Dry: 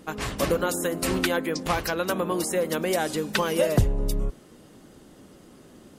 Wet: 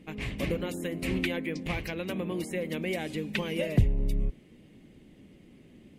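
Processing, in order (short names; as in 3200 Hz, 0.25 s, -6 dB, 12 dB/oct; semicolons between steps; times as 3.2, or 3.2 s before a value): EQ curve 210 Hz 0 dB, 1400 Hz -16 dB, 2200 Hz +3 dB, 5300 Hz -14 dB; gain -1.5 dB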